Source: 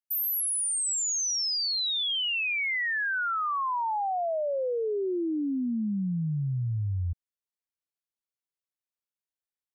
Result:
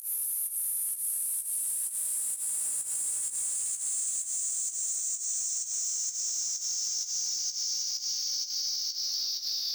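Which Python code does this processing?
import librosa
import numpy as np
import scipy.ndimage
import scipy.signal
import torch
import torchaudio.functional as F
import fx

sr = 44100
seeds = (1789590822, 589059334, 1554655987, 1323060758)

p1 = fx.peak_eq(x, sr, hz=4100.0, db=-15.0, octaves=0.25)
p2 = fx.over_compress(p1, sr, threshold_db=-33.0, ratio=-1.0)
p3 = p1 + (p2 * librosa.db_to_amplitude(-1.0))
p4 = fx.chorus_voices(p3, sr, voices=2, hz=1.2, base_ms=15, depth_ms=3.0, mix_pct=60)
p5 = fx.paulstretch(p4, sr, seeds[0], factor=7.9, window_s=1.0, from_s=0.39)
p6 = 10.0 ** (-29.5 / 20.0) * np.tanh(p5 / 10.0 ** (-29.5 / 20.0))
p7 = fx.dmg_crackle(p6, sr, seeds[1], per_s=400.0, level_db=-45.0)
p8 = fx.volume_shaper(p7, sr, bpm=128, per_beat=1, depth_db=-23, release_ms=120.0, shape='fast start')
p9 = fx.doubler(p8, sr, ms=17.0, db=-5.0)
y = p9 + 10.0 ** (-11.5 / 20.0) * np.pad(p9, (int(321 * sr / 1000.0), 0))[:len(p9)]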